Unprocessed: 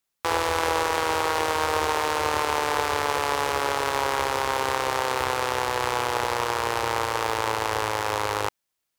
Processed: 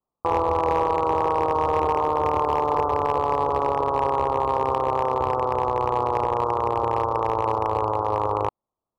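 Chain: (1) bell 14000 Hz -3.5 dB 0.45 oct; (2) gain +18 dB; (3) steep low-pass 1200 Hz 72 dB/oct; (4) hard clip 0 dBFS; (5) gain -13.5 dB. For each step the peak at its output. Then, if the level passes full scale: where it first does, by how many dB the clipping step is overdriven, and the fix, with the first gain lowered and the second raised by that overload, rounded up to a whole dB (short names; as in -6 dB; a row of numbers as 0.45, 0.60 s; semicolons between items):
-6.5, +11.5, +6.5, 0.0, -13.5 dBFS; step 2, 6.5 dB; step 2 +11 dB, step 5 -6.5 dB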